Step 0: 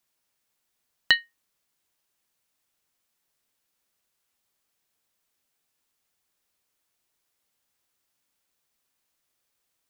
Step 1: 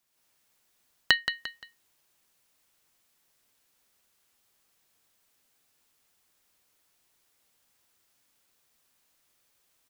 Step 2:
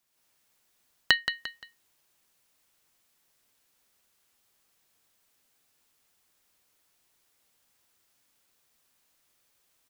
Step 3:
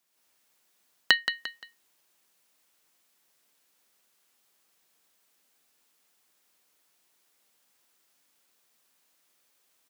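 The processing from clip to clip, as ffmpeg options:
ffmpeg -i in.wav -af "acompressor=threshold=-20dB:ratio=6,aecho=1:1:174|348|522:0.355|0.0993|0.0278,dynaudnorm=framelen=100:gausssize=3:maxgain=6dB" out.wav
ffmpeg -i in.wav -af anull out.wav
ffmpeg -i in.wav -af "highpass=180,volume=1dB" out.wav

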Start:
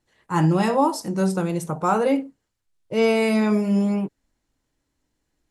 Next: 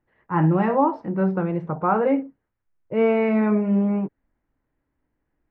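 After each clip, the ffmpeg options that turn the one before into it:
ffmpeg -i in.wav -af "lowpass=frequency=2100:width=0.5412,lowpass=frequency=2100:width=1.3066" out.wav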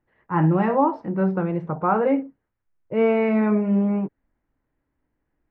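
ffmpeg -i in.wav -af anull out.wav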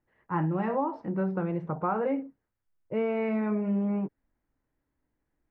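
ffmpeg -i in.wav -af "acompressor=threshold=-20dB:ratio=6,volume=-4.5dB" out.wav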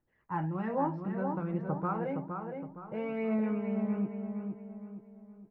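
ffmpeg -i in.wav -filter_complex "[0:a]aphaser=in_gain=1:out_gain=1:delay=1.4:decay=0.43:speed=1.2:type=triangular,asplit=2[link_01][link_02];[link_02]adelay=465,lowpass=frequency=2300:poles=1,volume=-5dB,asplit=2[link_03][link_04];[link_04]adelay=465,lowpass=frequency=2300:poles=1,volume=0.43,asplit=2[link_05][link_06];[link_06]adelay=465,lowpass=frequency=2300:poles=1,volume=0.43,asplit=2[link_07][link_08];[link_08]adelay=465,lowpass=frequency=2300:poles=1,volume=0.43,asplit=2[link_09][link_10];[link_10]adelay=465,lowpass=frequency=2300:poles=1,volume=0.43[link_11];[link_03][link_05][link_07][link_09][link_11]amix=inputs=5:normalize=0[link_12];[link_01][link_12]amix=inputs=2:normalize=0,volume=-6dB" out.wav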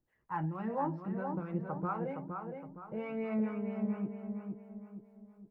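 ffmpeg -i in.wav -filter_complex "[0:a]acrossover=split=580[link_01][link_02];[link_01]aeval=exprs='val(0)*(1-0.7/2+0.7/2*cos(2*PI*4.4*n/s))':channel_layout=same[link_03];[link_02]aeval=exprs='val(0)*(1-0.7/2-0.7/2*cos(2*PI*4.4*n/s))':channel_layout=same[link_04];[link_03][link_04]amix=inputs=2:normalize=0" out.wav

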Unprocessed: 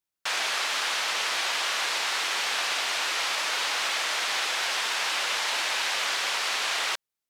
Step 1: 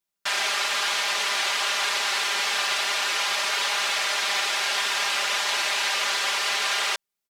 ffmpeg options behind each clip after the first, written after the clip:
ffmpeg -i in.wav -af "aecho=1:1:5:0.95" out.wav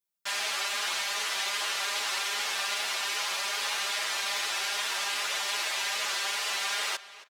ffmpeg -i in.wav -filter_complex "[0:a]highshelf=frequency=8000:gain=7,asplit=2[link_01][link_02];[link_02]adelay=273,lowpass=frequency=4300:poles=1,volume=-15.5dB,asplit=2[link_03][link_04];[link_04]adelay=273,lowpass=frequency=4300:poles=1,volume=0.23[link_05];[link_01][link_03][link_05]amix=inputs=3:normalize=0,asplit=2[link_06][link_07];[link_07]adelay=9.3,afreqshift=2.5[link_08];[link_06][link_08]amix=inputs=2:normalize=1,volume=-4dB" out.wav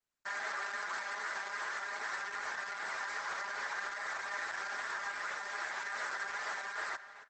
ffmpeg -i in.wav -af "highshelf=frequency=2200:width_type=q:width=3:gain=-8.5,alimiter=level_in=1.5dB:limit=-24dB:level=0:latency=1:release=108,volume=-1.5dB,volume=-2.5dB" -ar 48000 -c:a libopus -b:a 12k out.opus

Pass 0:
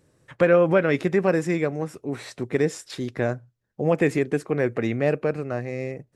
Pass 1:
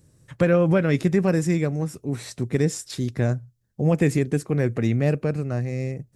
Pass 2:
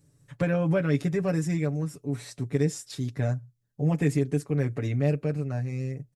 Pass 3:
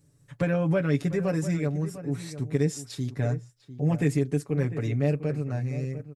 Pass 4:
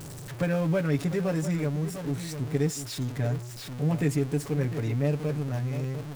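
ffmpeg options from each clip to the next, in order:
ffmpeg -i in.wav -af "bass=frequency=250:gain=13,treble=frequency=4000:gain=11,volume=-4dB" out.wav
ffmpeg -i in.wav -af "aecho=1:1:7:0.76,volume=-7.5dB" out.wav
ffmpeg -i in.wav -filter_complex "[0:a]asplit=2[link_01][link_02];[link_02]adelay=699.7,volume=-13dB,highshelf=frequency=4000:gain=-15.7[link_03];[link_01][link_03]amix=inputs=2:normalize=0" out.wav
ffmpeg -i in.wav -af "aeval=exprs='val(0)+0.5*0.0237*sgn(val(0))':channel_layout=same,volume=-2.5dB" out.wav

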